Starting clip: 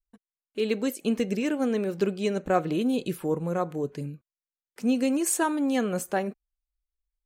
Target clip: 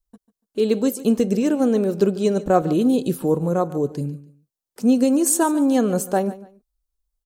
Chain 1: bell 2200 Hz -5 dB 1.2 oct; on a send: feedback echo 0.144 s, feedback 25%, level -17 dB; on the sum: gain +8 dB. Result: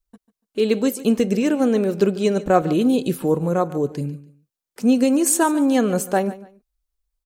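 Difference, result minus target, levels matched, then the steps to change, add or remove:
2000 Hz band +4.5 dB
change: bell 2200 Hz -12.5 dB 1.2 oct

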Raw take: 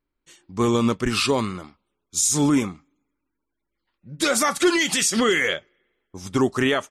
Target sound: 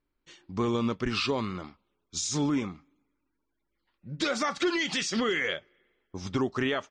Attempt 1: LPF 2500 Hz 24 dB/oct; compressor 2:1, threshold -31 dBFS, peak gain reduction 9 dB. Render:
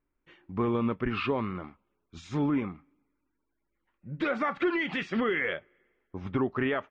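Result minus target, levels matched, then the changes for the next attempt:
4000 Hz band -9.5 dB
change: LPF 5500 Hz 24 dB/oct

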